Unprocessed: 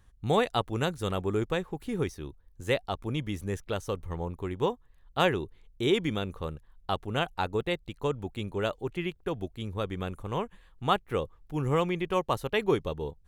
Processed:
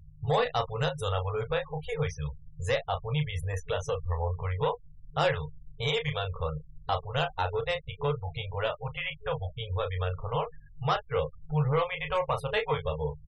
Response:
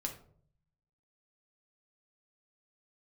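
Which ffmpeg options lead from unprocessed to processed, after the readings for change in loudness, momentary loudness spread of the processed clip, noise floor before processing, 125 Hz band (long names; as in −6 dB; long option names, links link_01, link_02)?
0.0 dB, 7 LU, −60 dBFS, +3.0 dB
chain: -filter_complex "[0:a]aeval=exprs='val(0)+0.001*(sin(2*PI*50*n/s)+sin(2*PI*2*50*n/s)/2+sin(2*PI*3*50*n/s)/3+sin(2*PI*4*50*n/s)/4+sin(2*PI*5*50*n/s)/5)':channel_layout=same,afftfilt=real='re*(1-between(b*sr/4096,160,420))':imag='im*(1-between(b*sr/4096,160,420))':win_size=4096:overlap=0.75,asplit=2[link_01][link_02];[link_02]acompressor=threshold=-40dB:ratio=6,volume=3dB[link_03];[link_01][link_03]amix=inputs=2:normalize=0,asoftclip=type=tanh:threshold=-20.5dB,asplit=2[link_04][link_05];[link_05]adelay=13,volume=-10dB[link_06];[link_04][link_06]amix=inputs=2:normalize=0,asplit=2[link_07][link_08];[link_08]aecho=0:1:14|33:0.251|0.473[link_09];[link_07][link_09]amix=inputs=2:normalize=0,afftfilt=real='re*gte(hypot(re,im),0.0112)':imag='im*gte(hypot(re,im),0.0112)':win_size=1024:overlap=0.75"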